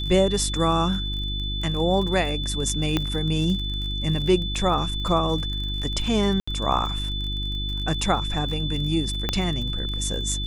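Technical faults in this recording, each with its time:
crackle 32 per s -31 dBFS
hum 50 Hz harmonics 7 -29 dBFS
whine 3.5 kHz -30 dBFS
2.97 s: pop -9 dBFS
6.40–6.47 s: dropout 75 ms
9.29 s: pop -9 dBFS

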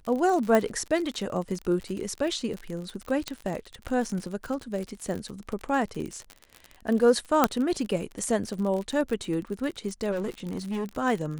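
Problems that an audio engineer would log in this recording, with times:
crackle 53 per s -31 dBFS
0.55 s: pop -11 dBFS
3.28 s: pop -16 dBFS
7.44 s: pop -5 dBFS
10.11–10.89 s: clipped -26.5 dBFS

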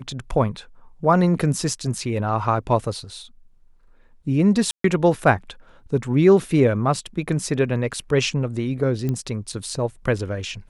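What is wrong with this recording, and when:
4.71–4.84 s: dropout 133 ms
9.09 s: pop -14 dBFS

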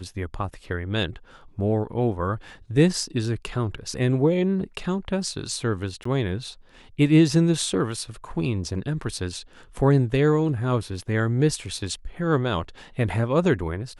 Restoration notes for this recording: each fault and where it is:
6.04–6.05 s: dropout 14 ms

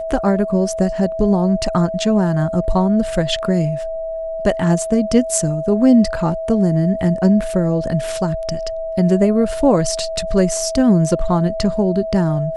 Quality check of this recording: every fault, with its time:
whine 650 Hz -22 dBFS

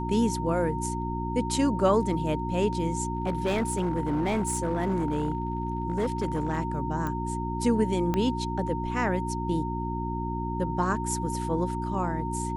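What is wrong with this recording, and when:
hum 60 Hz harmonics 6 -32 dBFS
whine 920 Hz -33 dBFS
3.13–6.58 s: clipped -22 dBFS
7.07 s: pop -19 dBFS
8.14 s: pop -14 dBFS

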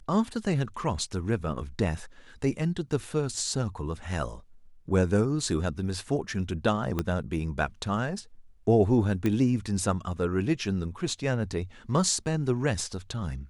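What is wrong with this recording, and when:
6.99 s: pop -14 dBFS
9.26 s: pop -15 dBFS

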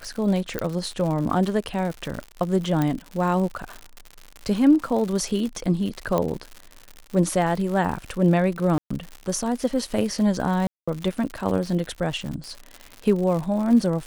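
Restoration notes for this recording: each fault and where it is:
crackle 120 per s -29 dBFS
0.59 s: pop -11 dBFS
2.82 s: pop -11 dBFS
6.18 s: pop -11 dBFS
8.78–8.90 s: dropout 125 ms
10.67–10.88 s: dropout 205 ms

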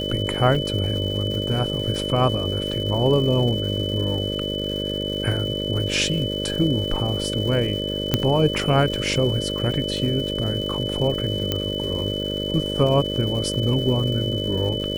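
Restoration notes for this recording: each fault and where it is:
buzz 50 Hz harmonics 12 -28 dBFS
crackle 380 per s -32 dBFS
whine 3 kHz -28 dBFS
0.55 s: dropout 3.7 ms
8.14 s: pop -4 dBFS
11.52 s: pop -8 dBFS

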